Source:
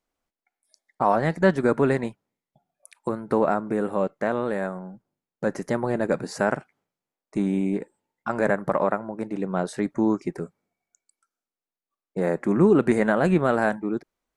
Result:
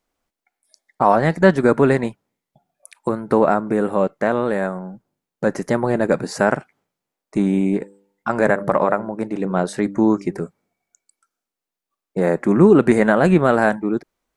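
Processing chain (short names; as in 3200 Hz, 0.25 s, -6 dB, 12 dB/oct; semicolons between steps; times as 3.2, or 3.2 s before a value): 7.77–10.42 de-hum 99.13 Hz, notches 6; gain +6 dB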